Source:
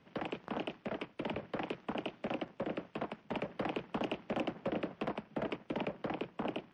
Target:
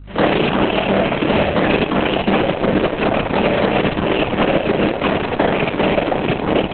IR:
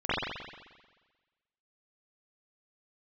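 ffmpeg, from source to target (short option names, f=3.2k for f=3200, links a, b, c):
-filter_complex "[0:a]agate=range=-33dB:threshold=-58dB:ratio=3:detection=peak,asettb=1/sr,asplit=3[a][b][c];[a]atrim=end=4.204[d];[b]atrim=start=4.2:end=6.08,asetpts=PTS-STARTPTS,afade=t=in:d=0.004:c=qsin,afade=t=out:st=1.876:d=0.004:c=qsin,lowshelf=f=130:g=-9.5[e];[c]atrim=start=6.076[f];[d][e]acrossfade=d=0.004:c1=hsin:c2=qsin[g];[g][f]acrossfade=d=0.004:c1=qsin:c2=hsin,bandreject=f=60:t=h:w=6,bandreject=f=120:t=h:w=6,bandreject=f=180:t=h:w=6,bandreject=f=240:t=h:w=6,bandreject=f=300:t=h:w=6,bandreject=f=360:t=h:w=6,bandreject=f=420:t=h:w=6,aecho=1:1:50|79:0.211|0.224[h];[1:a]atrim=start_sample=2205,asetrate=74970,aresample=44100[i];[h][i]afir=irnorm=-1:irlink=0,asplit=3[j][k][l];[j]afade=t=out:st=2.5:d=0.02[m];[k]aeval=exprs='0.126*(cos(1*acos(clip(val(0)/0.126,-1,1)))-cos(1*PI/2))+0.0112*(cos(4*acos(clip(val(0)/0.126,-1,1)))-cos(4*PI/2))':c=same,afade=t=in:st=2.5:d=0.02,afade=t=out:st=3.04:d=0.02[n];[l]afade=t=in:st=3.04:d=0.02[o];[m][n][o]amix=inputs=3:normalize=0,highshelf=f=4.9k:g=4,aeval=exprs='val(0)+0.00126*(sin(2*PI*50*n/s)+sin(2*PI*2*50*n/s)/2+sin(2*PI*3*50*n/s)/3+sin(2*PI*4*50*n/s)/4+sin(2*PI*5*50*n/s)/5)':c=same,asplit=2[p][q];[q]acrusher=samples=34:mix=1:aa=0.000001,volume=-7.5dB[r];[p][r]amix=inputs=2:normalize=0,alimiter=level_in=25dB:limit=-1dB:release=50:level=0:latency=1,volume=-5dB" -ar 48000 -c:a libopus -b:a 6k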